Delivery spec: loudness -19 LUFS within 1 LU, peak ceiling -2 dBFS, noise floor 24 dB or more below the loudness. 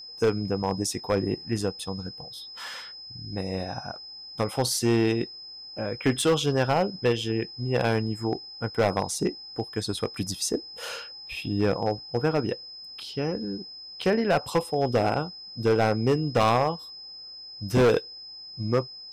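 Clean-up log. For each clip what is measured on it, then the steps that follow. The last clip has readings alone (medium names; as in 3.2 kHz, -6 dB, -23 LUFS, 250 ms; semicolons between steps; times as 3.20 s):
clipped samples 1.0%; clipping level -16.0 dBFS; steady tone 5.1 kHz; tone level -40 dBFS; loudness -27.0 LUFS; peak level -16.0 dBFS; loudness target -19.0 LUFS
-> clip repair -16 dBFS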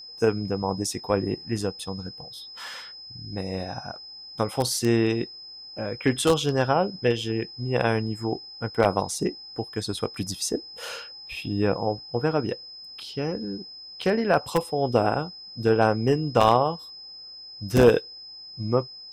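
clipped samples 0.0%; steady tone 5.1 kHz; tone level -40 dBFS
-> band-stop 5.1 kHz, Q 30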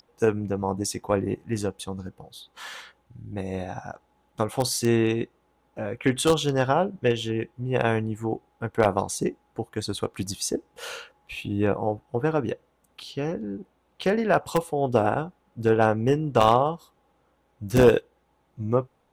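steady tone not found; loudness -25.5 LUFS; peak level -7.0 dBFS; loudness target -19.0 LUFS
-> trim +6.5 dB; peak limiter -2 dBFS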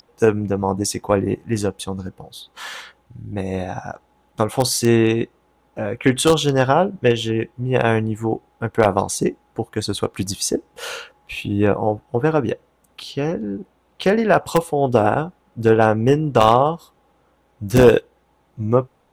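loudness -19.5 LUFS; peak level -2.0 dBFS; noise floor -61 dBFS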